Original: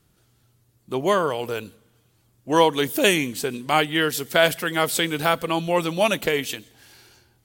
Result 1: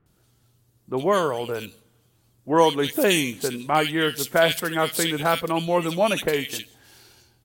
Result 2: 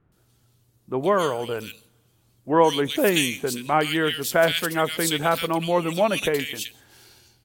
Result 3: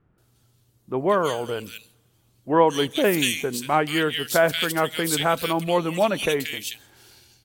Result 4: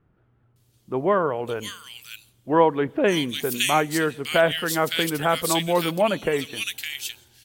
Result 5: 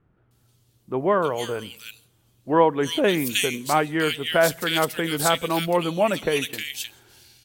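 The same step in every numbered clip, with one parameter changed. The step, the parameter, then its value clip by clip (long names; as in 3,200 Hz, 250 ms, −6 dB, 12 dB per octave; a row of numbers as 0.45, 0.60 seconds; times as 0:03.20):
multiband delay without the direct sound, delay time: 60, 120, 180, 560, 310 milliseconds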